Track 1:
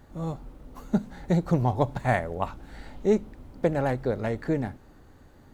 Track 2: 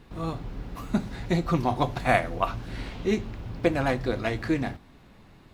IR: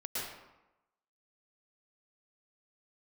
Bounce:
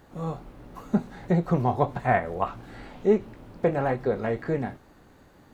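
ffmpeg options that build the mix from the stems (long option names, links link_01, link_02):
-filter_complex "[0:a]volume=1.5dB[link_01];[1:a]highshelf=frequency=2600:gain=-10.5,flanger=delay=16.5:depth=7.7:speed=1.5,volume=-1.5dB[link_02];[link_01][link_02]amix=inputs=2:normalize=0,acrossover=split=2600[link_03][link_04];[link_04]acompressor=threshold=-56dB:ratio=4:attack=1:release=60[link_05];[link_03][link_05]amix=inputs=2:normalize=0,lowshelf=frequency=140:gain=-9.5"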